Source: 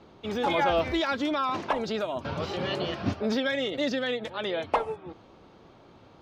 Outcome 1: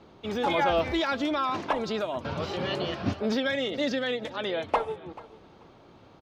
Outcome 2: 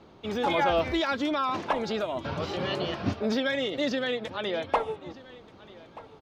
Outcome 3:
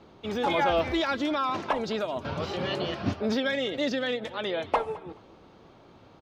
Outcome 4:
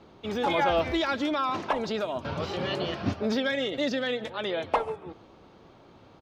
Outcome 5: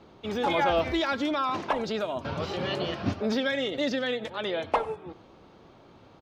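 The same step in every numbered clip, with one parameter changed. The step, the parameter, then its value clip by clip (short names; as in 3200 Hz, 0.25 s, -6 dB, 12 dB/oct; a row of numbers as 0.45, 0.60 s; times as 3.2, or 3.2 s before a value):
feedback echo, time: 436, 1231, 212, 139, 94 ms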